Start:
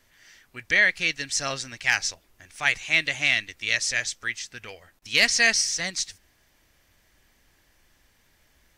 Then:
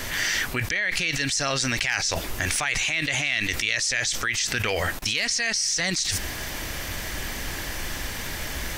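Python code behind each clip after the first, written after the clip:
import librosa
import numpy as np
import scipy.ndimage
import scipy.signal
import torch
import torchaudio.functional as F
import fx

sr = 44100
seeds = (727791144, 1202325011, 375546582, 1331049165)

y = fx.env_flatten(x, sr, amount_pct=100)
y = y * 10.0 ** (-8.5 / 20.0)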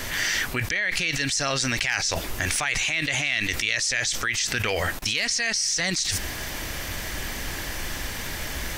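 y = x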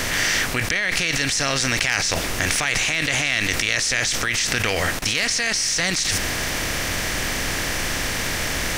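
y = fx.bin_compress(x, sr, power=0.6)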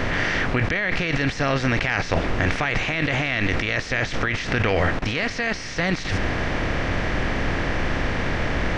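y = fx.spacing_loss(x, sr, db_at_10k=38)
y = y * 10.0 ** (5.5 / 20.0)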